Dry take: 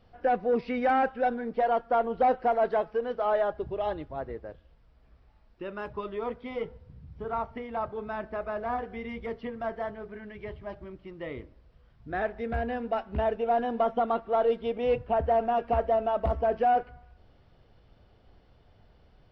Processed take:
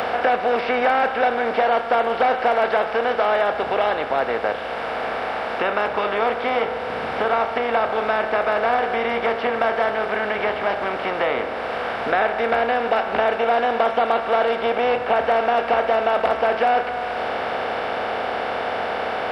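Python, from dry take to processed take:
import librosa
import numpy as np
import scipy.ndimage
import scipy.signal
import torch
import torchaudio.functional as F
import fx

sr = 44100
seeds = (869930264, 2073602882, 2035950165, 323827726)

y = fx.bin_compress(x, sr, power=0.4)
y = fx.highpass(y, sr, hz=590.0, slope=6)
y = fx.high_shelf(y, sr, hz=2000.0, db=7.5)
y = fx.band_squash(y, sr, depth_pct=70)
y = F.gain(torch.from_numpy(y), 4.0).numpy()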